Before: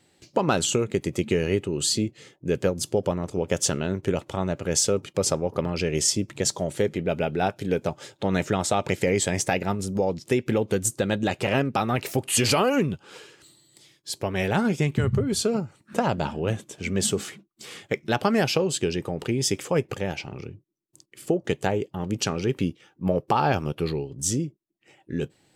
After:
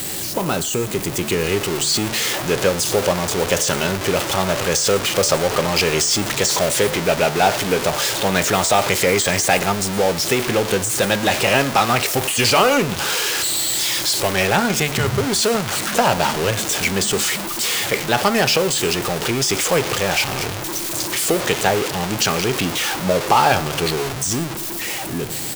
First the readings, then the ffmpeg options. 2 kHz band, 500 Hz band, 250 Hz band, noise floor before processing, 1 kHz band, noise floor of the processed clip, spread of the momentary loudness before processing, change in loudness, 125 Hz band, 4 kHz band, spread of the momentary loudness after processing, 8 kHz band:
+12.0 dB, +6.0 dB, +3.0 dB, -64 dBFS, +9.5 dB, -26 dBFS, 9 LU, +7.5 dB, +2.5 dB, +12.0 dB, 5 LU, +9.0 dB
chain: -filter_complex "[0:a]aeval=exprs='val(0)+0.5*0.0668*sgn(val(0))':c=same,deesser=0.45,highshelf=f=6.2k:g=11.5,bandreject=f=73.29:t=h:w=4,bandreject=f=146.58:t=h:w=4,bandreject=f=219.87:t=h:w=4,bandreject=f=293.16:t=h:w=4,bandreject=f=366.45:t=h:w=4,bandreject=f=439.74:t=h:w=4,bandreject=f=513.03:t=h:w=4,bandreject=f=586.32:t=h:w=4,bandreject=f=659.61:t=h:w=4,bandreject=f=732.9:t=h:w=4,bandreject=f=806.19:t=h:w=4,bandreject=f=879.48:t=h:w=4,bandreject=f=952.77:t=h:w=4,bandreject=f=1.02606k:t=h:w=4,bandreject=f=1.09935k:t=h:w=4,bandreject=f=1.17264k:t=h:w=4,bandreject=f=1.24593k:t=h:w=4,bandreject=f=1.31922k:t=h:w=4,bandreject=f=1.39251k:t=h:w=4,bandreject=f=1.4658k:t=h:w=4,bandreject=f=1.53909k:t=h:w=4,bandreject=f=1.61238k:t=h:w=4,bandreject=f=1.68567k:t=h:w=4,bandreject=f=1.75896k:t=h:w=4,bandreject=f=1.83225k:t=h:w=4,bandreject=f=1.90554k:t=h:w=4,bandreject=f=1.97883k:t=h:w=4,bandreject=f=2.05212k:t=h:w=4,acrossover=split=520|7200[a][b][c];[b]dynaudnorm=f=310:g=9:m=11.5dB[d];[c]aecho=1:1:116:0.501[e];[a][d][e]amix=inputs=3:normalize=0,volume=-1dB"

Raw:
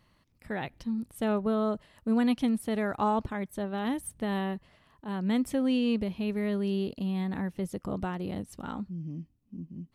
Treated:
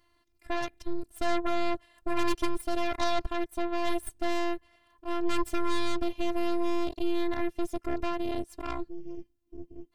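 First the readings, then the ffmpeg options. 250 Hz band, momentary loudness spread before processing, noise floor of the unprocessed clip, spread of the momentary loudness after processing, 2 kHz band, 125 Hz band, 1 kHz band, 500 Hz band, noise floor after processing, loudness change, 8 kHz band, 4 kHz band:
-4.0 dB, 11 LU, -69 dBFS, 10 LU, +3.0 dB, -10.5 dB, +2.0 dB, +1.0 dB, -70 dBFS, -1.5 dB, +1.5 dB, +4.0 dB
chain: -af "aeval=exprs='0.15*(cos(1*acos(clip(val(0)/0.15,-1,1)))-cos(1*PI/2))+0.0422*(cos(8*acos(clip(val(0)/0.15,-1,1)))-cos(8*PI/2))':c=same,afftfilt=real='hypot(re,im)*cos(PI*b)':imag='0':win_size=512:overlap=0.75,volume=1.5dB"

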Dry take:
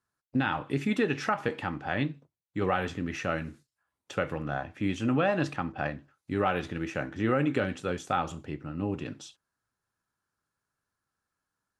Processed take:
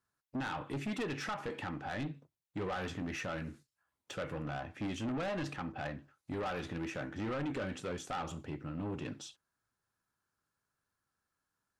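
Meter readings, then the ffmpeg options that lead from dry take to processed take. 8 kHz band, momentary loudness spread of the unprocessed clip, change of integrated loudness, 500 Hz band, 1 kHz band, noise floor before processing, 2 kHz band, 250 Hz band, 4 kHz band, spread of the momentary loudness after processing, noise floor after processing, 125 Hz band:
-2.5 dB, 10 LU, -9.0 dB, -9.5 dB, -9.0 dB, under -85 dBFS, -9.0 dB, -8.5 dB, -5.0 dB, 7 LU, under -85 dBFS, -8.0 dB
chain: -filter_complex "[0:a]asplit=2[a][b];[b]alimiter=limit=-22dB:level=0:latency=1:release=190,volume=0dB[c];[a][c]amix=inputs=2:normalize=0,asoftclip=type=tanh:threshold=-25.5dB,volume=-7.5dB"

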